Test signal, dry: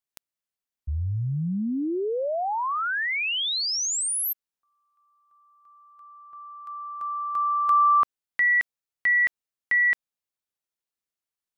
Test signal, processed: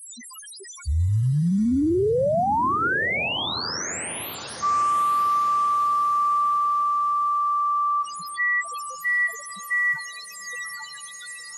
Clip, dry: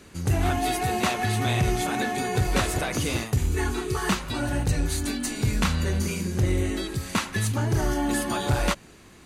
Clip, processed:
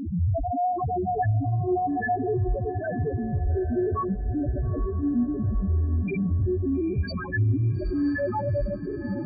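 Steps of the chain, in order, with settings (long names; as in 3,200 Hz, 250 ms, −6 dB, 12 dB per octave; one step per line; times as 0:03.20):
linear delta modulator 64 kbit/s, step −32 dBFS
notch filter 770 Hz, Q 13
reverb reduction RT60 0.77 s
high-pass filter 57 Hz 12 dB per octave
dynamic equaliser 500 Hz, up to +3 dB, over −43 dBFS, Q 1.3
fuzz pedal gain 50 dB, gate −57 dBFS
bit-depth reduction 12 bits, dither triangular
spectral peaks only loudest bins 1
feedback delay with all-pass diffusion 900 ms, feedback 49%, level −12 dB
level −2 dB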